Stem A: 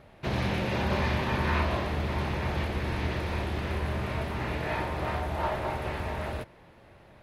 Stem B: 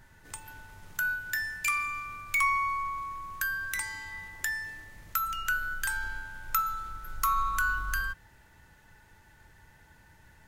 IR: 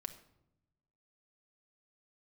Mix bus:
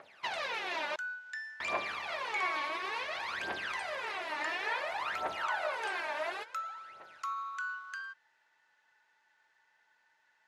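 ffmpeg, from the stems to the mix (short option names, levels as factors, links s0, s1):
-filter_complex "[0:a]acompressor=threshold=0.0316:ratio=6,aphaser=in_gain=1:out_gain=1:delay=3.5:decay=0.79:speed=0.57:type=triangular,volume=0.944,asplit=3[s0][s1][s2];[s0]atrim=end=0.96,asetpts=PTS-STARTPTS,afade=t=out:st=0.956:d=0.004:c=hsin[s3];[s1]atrim=start=0.96:end=1.6,asetpts=PTS-STARTPTS,volume=0[s4];[s2]atrim=start=1.6,asetpts=PTS-STARTPTS,afade=t=in:d=0.004:c=hsin[s5];[s3][s4][s5]concat=n=3:v=0:a=1[s6];[1:a]lowpass=5900,volume=0.355[s7];[s6][s7]amix=inputs=2:normalize=0,highpass=790,lowpass=7500"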